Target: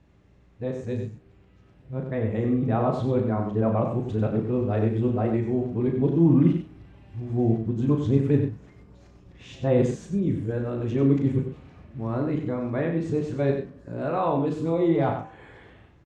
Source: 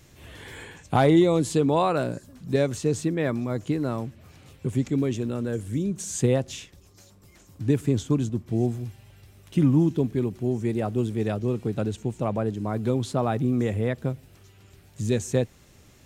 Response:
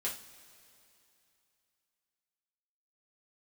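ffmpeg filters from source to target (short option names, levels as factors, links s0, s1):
-filter_complex "[0:a]areverse,lowpass=1800,aemphasis=mode=production:type=cd,asplit=2[s0][s1];[s1]adelay=36,volume=0.473[s2];[s0][s2]amix=inputs=2:normalize=0,bandreject=f=77.7:t=h:w=4,bandreject=f=155.4:t=h:w=4,bandreject=f=233.1:t=h:w=4,bandreject=f=310.8:t=h:w=4,bandreject=f=388.5:t=h:w=4,bandreject=f=466.2:t=h:w=4,bandreject=f=543.9:t=h:w=4,bandreject=f=621.6:t=h:w=4,bandreject=f=699.3:t=h:w=4,bandreject=f=777:t=h:w=4,bandreject=f=854.7:t=h:w=4,bandreject=f=932.4:t=h:w=4,bandreject=f=1010.1:t=h:w=4,bandreject=f=1087.8:t=h:w=4,bandreject=f=1165.5:t=h:w=4,bandreject=f=1243.2:t=h:w=4,bandreject=f=1320.9:t=h:w=4,bandreject=f=1398.6:t=h:w=4,bandreject=f=1476.3:t=h:w=4,bandreject=f=1554:t=h:w=4,bandreject=f=1631.7:t=h:w=4,bandreject=f=1709.4:t=h:w=4,bandreject=f=1787.1:t=h:w=4,bandreject=f=1864.8:t=h:w=4,bandreject=f=1942.5:t=h:w=4,bandreject=f=2020.2:t=h:w=4,bandreject=f=2097.9:t=h:w=4,bandreject=f=2175.6:t=h:w=4,bandreject=f=2253.3:t=h:w=4,bandreject=f=2331:t=h:w=4,bandreject=f=2408.7:t=h:w=4,bandreject=f=2486.4:t=h:w=4,bandreject=f=2564.1:t=h:w=4,bandreject=f=2641.8:t=h:w=4,bandreject=f=2719.5:t=h:w=4,bandreject=f=2797.2:t=h:w=4,bandreject=f=2874.9:t=h:w=4,bandreject=f=2952.6:t=h:w=4,bandreject=f=3030.3:t=h:w=4,aeval=exprs='val(0)+0.00251*(sin(2*PI*60*n/s)+sin(2*PI*2*60*n/s)/2+sin(2*PI*3*60*n/s)/3+sin(2*PI*4*60*n/s)/4+sin(2*PI*5*60*n/s)/5)':c=same,aecho=1:1:94:0.447,dynaudnorm=f=210:g=21:m=3.55,asplit=2[s3][s4];[s4]equalizer=f=1400:w=0.8:g=14.5[s5];[1:a]atrim=start_sample=2205,lowpass=f=1500:w=0.5412,lowpass=f=1500:w=1.3066[s6];[s5][s6]afir=irnorm=-1:irlink=0,volume=0.0794[s7];[s3][s7]amix=inputs=2:normalize=0,volume=0.447"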